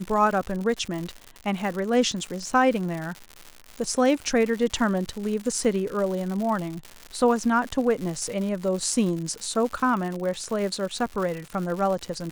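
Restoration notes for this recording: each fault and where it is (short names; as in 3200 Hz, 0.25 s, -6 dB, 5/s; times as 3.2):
crackle 160/s -30 dBFS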